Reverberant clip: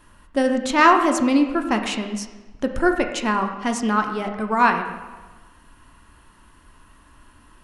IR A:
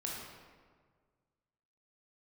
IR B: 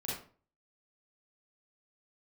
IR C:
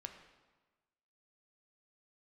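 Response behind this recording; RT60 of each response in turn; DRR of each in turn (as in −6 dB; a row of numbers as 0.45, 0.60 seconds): C; 1.7, 0.40, 1.3 seconds; −3.5, −7.0, 4.5 decibels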